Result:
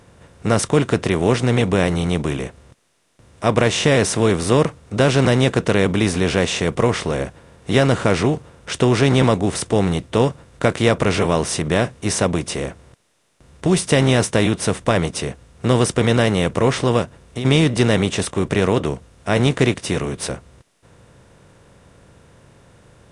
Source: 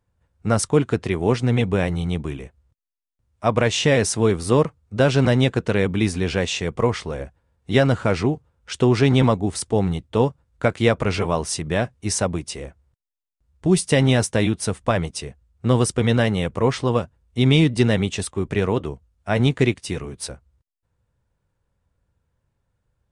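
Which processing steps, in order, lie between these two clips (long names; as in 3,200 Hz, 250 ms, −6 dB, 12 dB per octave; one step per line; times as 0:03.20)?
compressor on every frequency bin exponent 0.6
0:17.02–0:17.45: downward compressor 4 to 1, threshold −24 dBFS, peak gain reduction 11.5 dB
level −1 dB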